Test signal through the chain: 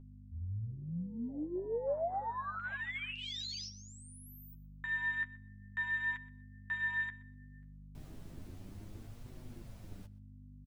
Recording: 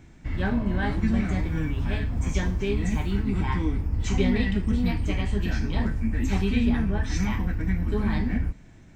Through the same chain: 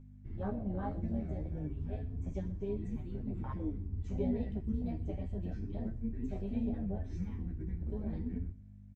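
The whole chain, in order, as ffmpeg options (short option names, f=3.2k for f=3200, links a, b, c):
-filter_complex "[0:a]afwtdn=0.0447,equalizer=f=580:t=o:w=0.92:g=7,aeval=exprs='val(0)+0.0141*(sin(2*PI*50*n/s)+sin(2*PI*2*50*n/s)/2+sin(2*PI*3*50*n/s)/3+sin(2*PI*4*50*n/s)/4+sin(2*PI*5*50*n/s)/5)':c=same,flanger=delay=7.7:depth=6.1:regen=22:speed=0.32:shape=triangular,asplit=2[a][b];[b]aecho=0:1:124|248:0.0891|0.0134[c];[a][c]amix=inputs=2:normalize=0,volume=-9dB"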